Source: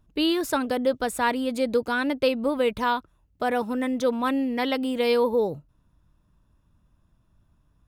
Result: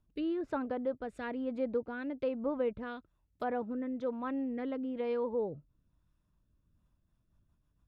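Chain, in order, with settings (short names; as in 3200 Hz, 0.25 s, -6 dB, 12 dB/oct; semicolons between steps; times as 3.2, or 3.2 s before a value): rotary speaker horn 1.1 Hz, later 7 Hz, at 6.61; treble ducked by the level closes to 1400 Hz, closed at -24.5 dBFS; gain -8.5 dB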